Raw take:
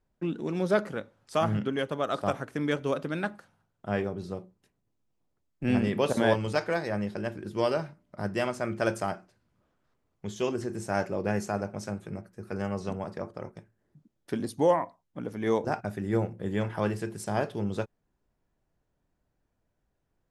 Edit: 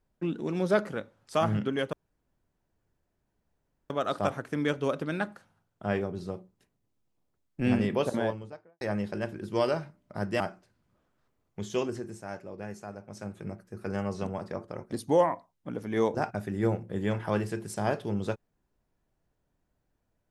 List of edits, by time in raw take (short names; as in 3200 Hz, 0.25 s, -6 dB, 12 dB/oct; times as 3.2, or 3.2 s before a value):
1.93 insert room tone 1.97 s
5.78–6.84 studio fade out
8.43–9.06 cut
10.43–12.17 dip -11 dB, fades 0.48 s
13.58–14.42 cut